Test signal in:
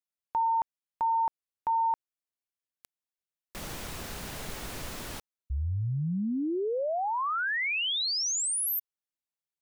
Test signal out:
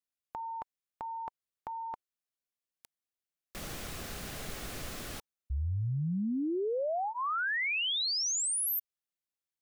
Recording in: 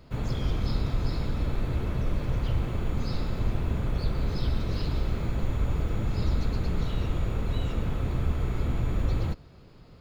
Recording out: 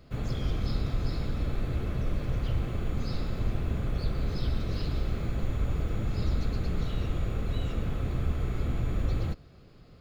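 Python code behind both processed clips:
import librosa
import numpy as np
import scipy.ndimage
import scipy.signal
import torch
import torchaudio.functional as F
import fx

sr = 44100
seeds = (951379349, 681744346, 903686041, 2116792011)

y = fx.notch(x, sr, hz=930.0, q=6.6)
y = F.gain(torch.from_numpy(y), -2.0).numpy()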